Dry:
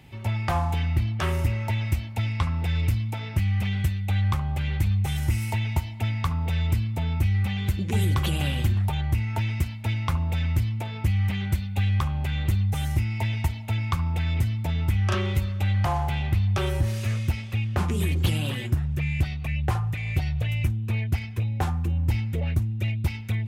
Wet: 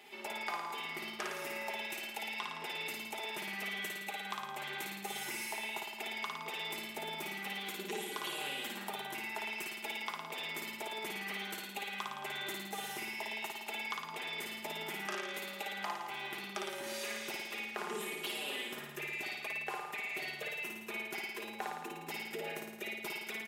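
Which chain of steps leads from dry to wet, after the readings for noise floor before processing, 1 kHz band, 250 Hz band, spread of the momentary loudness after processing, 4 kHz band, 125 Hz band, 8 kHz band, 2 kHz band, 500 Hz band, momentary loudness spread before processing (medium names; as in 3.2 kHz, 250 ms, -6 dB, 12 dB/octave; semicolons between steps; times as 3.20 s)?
-34 dBFS, -6.5 dB, -17.0 dB, 3 LU, -3.0 dB, -37.5 dB, -3.0 dB, -2.5 dB, -6.5 dB, 4 LU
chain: high-pass 350 Hz 24 dB/octave; band-stop 570 Hz, Q 13; comb 4.9 ms, depth 77%; compression 4:1, threshold -38 dBFS, peak gain reduction 13 dB; flutter echo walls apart 9.5 m, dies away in 1 s; trim -2 dB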